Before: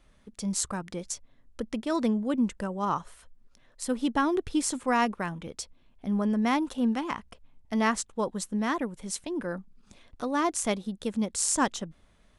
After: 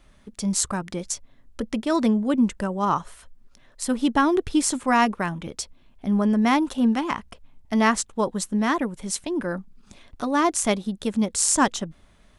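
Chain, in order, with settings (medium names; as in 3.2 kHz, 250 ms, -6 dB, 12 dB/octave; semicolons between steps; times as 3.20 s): band-stop 490 Hz, Q 12; trim +6 dB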